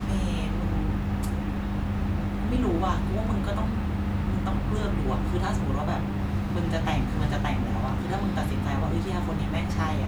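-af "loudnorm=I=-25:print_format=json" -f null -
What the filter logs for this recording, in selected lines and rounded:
"input_i" : "-27.8",
"input_tp" : "-13.0",
"input_lra" : "0.4",
"input_thresh" : "-37.8",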